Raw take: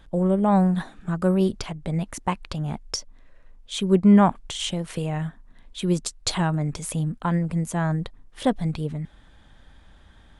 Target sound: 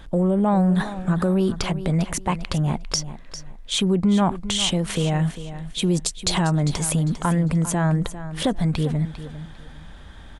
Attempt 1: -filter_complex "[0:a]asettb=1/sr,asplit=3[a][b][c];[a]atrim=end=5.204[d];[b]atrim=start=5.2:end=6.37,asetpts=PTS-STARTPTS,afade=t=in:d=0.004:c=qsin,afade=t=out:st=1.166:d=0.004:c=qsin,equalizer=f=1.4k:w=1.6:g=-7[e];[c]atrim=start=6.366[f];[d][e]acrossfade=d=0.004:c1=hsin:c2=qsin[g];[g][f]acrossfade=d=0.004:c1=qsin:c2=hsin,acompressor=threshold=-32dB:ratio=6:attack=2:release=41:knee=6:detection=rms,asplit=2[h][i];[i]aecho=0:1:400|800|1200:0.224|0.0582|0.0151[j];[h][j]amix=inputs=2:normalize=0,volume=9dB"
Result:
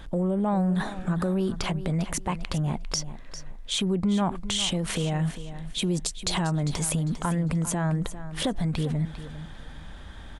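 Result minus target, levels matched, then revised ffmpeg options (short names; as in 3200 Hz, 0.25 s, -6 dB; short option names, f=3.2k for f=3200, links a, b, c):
compressor: peak gain reduction +6 dB
-filter_complex "[0:a]asettb=1/sr,asplit=3[a][b][c];[a]atrim=end=5.204[d];[b]atrim=start=5.2:end=6.37,asetpts=PTS-STARTPTS,afade=t=in:d=0.004:c=qsin,afade=t=out:st=1.166:d=0.004:c=qsin,equalizer=f=1.4k:w=1.6:g=-7[e];[c]atrim=start=6.366[f];[d][e]acrossfade=d=0.004:c1=hsin:c2=qsin[g];[g][f]acrossfade=d=0.004:c1=qsin:c2=hsin,acompressor=threshold=-25dB:ratio=6:attack=2:release=41:knee=6:detection=rms,asplit=2[h][i];[i]aecho=0:1:400|800|1200:0.224|0.0582|0.0151[j];[h][j]amix=inputs=2:normalize=0,volume=9dB"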